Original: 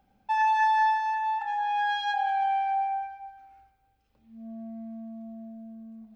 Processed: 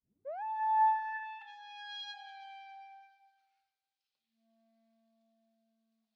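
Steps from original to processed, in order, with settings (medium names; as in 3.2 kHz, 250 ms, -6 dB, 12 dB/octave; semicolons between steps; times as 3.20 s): tape start-up on the opening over 0.43 s; band-pass sweep 240 Hz -> 4.3 kHz, 0.23–1.58 s; trim -2.5 dB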